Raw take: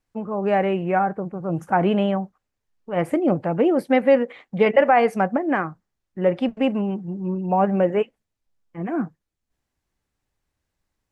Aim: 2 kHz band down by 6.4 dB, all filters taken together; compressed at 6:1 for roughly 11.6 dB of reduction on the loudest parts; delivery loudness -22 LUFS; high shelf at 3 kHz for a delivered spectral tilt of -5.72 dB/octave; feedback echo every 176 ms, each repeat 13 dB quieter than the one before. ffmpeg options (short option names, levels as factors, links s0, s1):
-af "equalizer=f=2000:t=o:g=-6.5,highshelf=f=3000:g=-5,acompressor=threshold=0.0631:ratio=6,aecho=1:1:176|352|528:0.224|0.0493|0.0108,volume=2.24"